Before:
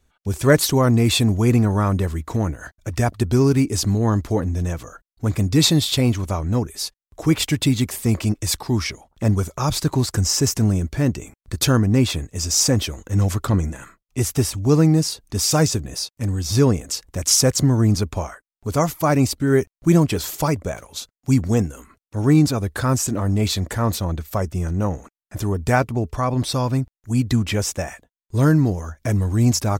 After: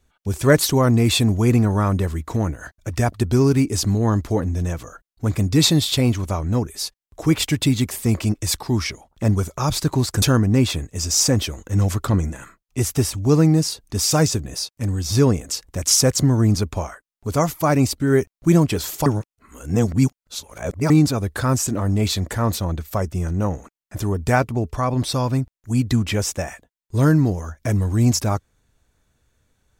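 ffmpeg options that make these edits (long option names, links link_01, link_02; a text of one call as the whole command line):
ffmpeg -i in.wav -filter_complex "[0:a]asplit=4[link_01][link_02][link_03][link_04];[link_01]atrim=end=10.222[link_05];[link_02]atrim=start=11.618:end=20.462[link_06];[link_03]atrim=start=20.458:end=22.302,asetpts=PTS-STARTPTS,areverse[link_07];[link_04]atrim=start=22.298[link_08];[link_05][link_06]acrossfade=duration=0.004:curve1=hsin:curve2=hsin[link_09];[link_09][link_07]acrossfade=duration=0.004:curve1=hsin:curve2=hsin[link_10];[link_10][link_08]acrossfade=duration=0.004:curve1=hsin:curve2=hsin" out.wav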